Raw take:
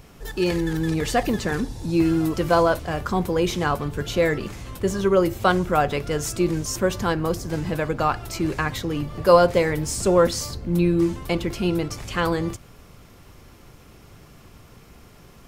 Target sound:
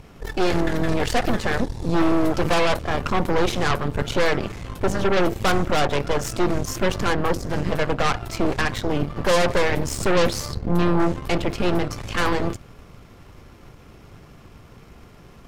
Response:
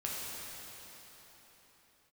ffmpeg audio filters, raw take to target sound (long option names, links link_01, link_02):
-af "aemphasis=mode=reproduction:type=cd,asoftclip=type=tanh:threshold=-11.5dB,aeval=exprs='0.266*(cos(1*acos(clip(val(0)/0.266,-1,1)))-cos(1*PI/2))+0.0299*(cos(5*acos(clip(val(0)/0.266,-1,1)))-cos(5*PI/2))+0.106*(cos(6*acos(clip(val(0)/0.266,-1,1)))-cos(6*PI/2))':channel_layout=same,volume=-2dB"